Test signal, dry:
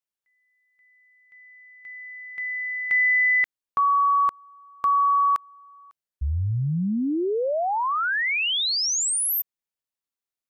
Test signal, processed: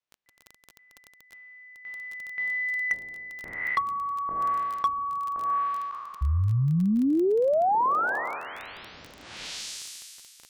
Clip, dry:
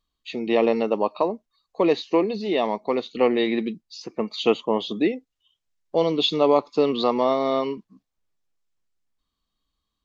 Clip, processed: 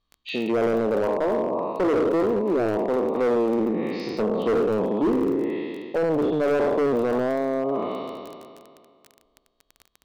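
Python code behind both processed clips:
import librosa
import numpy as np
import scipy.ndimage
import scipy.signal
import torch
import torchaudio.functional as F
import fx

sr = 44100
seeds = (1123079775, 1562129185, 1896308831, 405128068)

y = fx.spec_trails(x, sr, decay_s=2.11)
y = fx.cheby_harmonics(y, sr, harmonics=(5, 8), levels_db=(-19, -36), full_scale_db=4.5)
y = scipy.signal.sosfilt(scipy.signal.butter(2, 4500.0, 'lowpass', fs=sr, output='sos'), y)
y = fx.env_lowpass_down(y, sr, base_hz=590.0, full_db=-14.0)
y = fx.dmg_crackle(y, sr, seeds[0], per_s=18.0, level_db=-27.0)
y = np.clip(10.0 ** (15.0 / 20.0) * y, -1.0, 1.0) / 10.0 ** (15.0 / 20.0)
y = y * 10.0 ** (-3.0 / 20.0)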